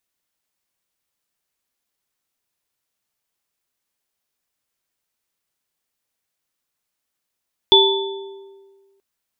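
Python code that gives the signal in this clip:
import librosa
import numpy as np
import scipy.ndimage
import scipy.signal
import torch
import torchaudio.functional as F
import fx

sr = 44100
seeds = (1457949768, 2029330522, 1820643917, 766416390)

y = fx.additive_free(sr, length_s=1.28, hz=392.0, level_db=-12.0, upper_db=(-4, 5.0), decay_s=1.61, upper_decays_s=(1.15, 0.82), upper_hz=(899.0, 3470.0))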